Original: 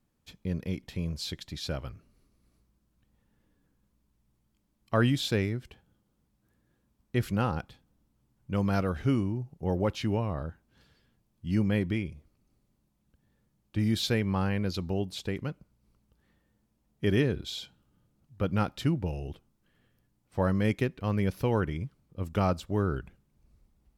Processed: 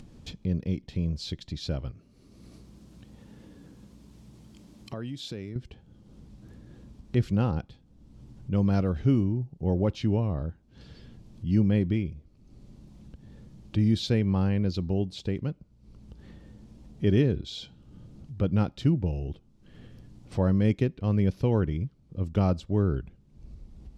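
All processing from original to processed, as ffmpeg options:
-filter_complex "[0:a]asettb=1/sr,asplit=3[a][b][c];[a]atrim=end=1.914[d];[b]atrim=start=1.91:end=5.56,asetpts=PTS-STARTPTS,afade=t=in:d=0.004:c=qsin,afade=t=out:st=3.646:d=0.004:c=qsin,acompressor=threshold=-45dB:ratio=2:attack=3.2:release=140:knee=1:detection=peak,highpass=f=170:p=1,highshelf=f=9.5k:g=7.5[e];[c]atrim=start=5.556[f];[d][e]acrossfade=d=0.004:c1=hsin:c2=qsin[g];[g][f]acrossfade=d=0.004:c1=qsin:c2=hsin,lowpass=4.7k,equalizer=f=1.5k:w=0.47:g=-11.5,acompressor=mode=upward:threshold=-36dB:ratio=2.5,volume=5dB"

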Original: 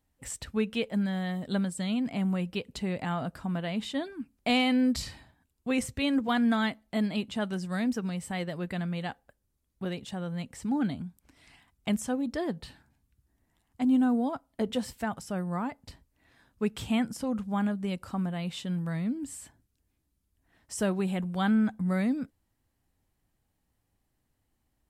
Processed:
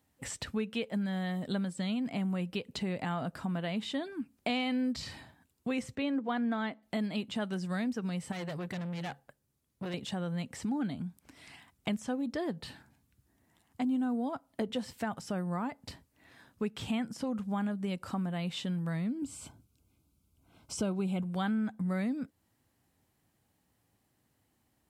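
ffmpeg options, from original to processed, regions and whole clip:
-filter_complex "[0:a]asettb=1/sr,asplit=3[a][b][c];[a]atrim=end=5.954[d];[b]atrim=start=5.95:end=6.83,asetpts=PTS-STARTPTS,afade=t=in:d=0.004:c=qsin,afade=t=out:st=0.876:d=0.004:c=qsin,highpass=360,aemphasis=mode=reproduction:type=riaa[e];[c]atrim=start=6.826[f];[d][e]acrossfade=d=0.004:c1=hsin:c2=qsin[g];[g][f]acrossfade=d=0.004:c1=qsin:c2=hsin,asettb=1/sr,asplit=3[h][i][j];[h]atrim=end=8.324[k];[i]atrim=start=8.32:end=9.94,asetpts=PTS-STARTPTS,afade=t=in:d=0.004:c=qsin,afade=t=out:st=1.616:d=0.004:c=qsin,equalizer=f=140:w=7.6:g=8,aeval=exprs='(tanh(70.8*val(0)+0.55)-tanh(0.55))/70.8':c=same[l];[j]atrim=start=9.936[m];[k][l]acrossfade=d=0.004:c1=hsin:c2=qsin[n];[n][m]acrossfade=d=0.004:c1=qsin:c2=hsin,asettb=1/sr,asplit=3[o][p][q];[o]atrim=end=19.224[r];[p]atrim=start=19.22:end=21.23,asetpts=PTS-STARTPTS,afade=t=in:d=0.004:c=qsin,afade=t=out:st=2.006:d=0.004:c=qsin,asuperstop=centerf=1800:order=8:qfactor=3.6,lowshelf=f=150:g=9[s];[q]atrim=start=21.226[t];[r][s]acrossfade=d=0.004:c1=hsin:c2=qsin[u];[u][t]acrossfade=d=0.004:c1=qsin:c2=hsin,acrossover=split=6400[v][w];[w]acompressor=threshold=-55dB:ratio=4:attack=1:release=60[x];[v][x]amix=inputs=2:normalize=0,highpass=100,acompressor=threshold=-40dB:ratio=2.5,volume=5dB"

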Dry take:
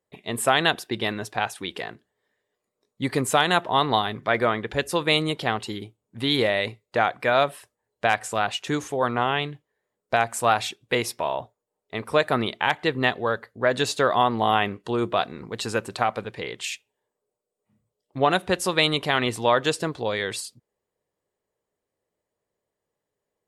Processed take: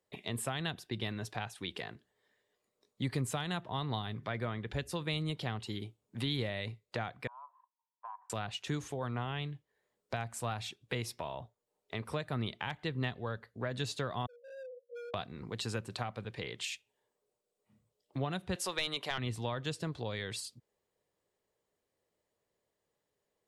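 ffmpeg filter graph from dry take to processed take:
-filter_complex "[0:a]asettb=1/sr,asplit=3[a][b][c];[a]atrim=end=7.274[d];[b]atrim=start=7.27:end=8.3,asetpts=PTS-STARTPTS,afade=t=in:d=0.004:c=qsin,afade=t=out:st=1.026:d=0.004:c=qsin,asuperpass=centerf=990:order=4:qfactor=7.1,acompressor=threshold=-38dB:ratio=2.5:attack=3.2:release=140:knee=1:detection=peak[e];[c]atrim=start=8.296[f];[d][e]acrossfade=d=0.004:c1=hsin:c2=qsin[g];[g][f]acrossfade=d=0.004:c1=qsin:c2=hsin,asettb=1/sr,asplit=3[h][i][j];[h]atrim=end=14.264[k];[i]atrim=start=14.26:end=15.14,asetpts=PTS-STARTPTS,afade=t=in:d=0.004:c=qsin,afade=t=out:st=0.876:d=0.004:c=qsin,asuperpass=centerf=510:order=20:qfactor=7.3,asoftclip=type=hard:threshold=-38.5dB[l];[j]atrim=start=15.136[m];[k][l]acrossfade=d=0.004:c1=hsin:c2=qsin[n];[n][m]acrossfade=d=0.004:c1=qsin:c2=hsin,asettb=1/sr,asplit=3[o][p][q];[o]atrim=end=18.554[r];[p]atrim=start=18.55:end=19.18,asetpts=PTS-STARTPTS,afade=t=in:d=0.004:c=qsin,afade=t=out:st=0.626:d=0.004:c=qsin,highpass=490,acontrast=88[s];[q]atrim=start=19.176[t];[r][s]acrossfade=d=0.004:c1=hsin:c2=qsin[u];[u][t]acrossfade=d=0.004:c1=qsin:c2=hsin,acrossover=split=170[v][w];[w]acompressor=threshold=-41dB:ratio=3[x];[v][x]amix=inputs=2:normalize=0,equalizer=f=3.9k:w=0.83:g=4,volume=-1.5dB"

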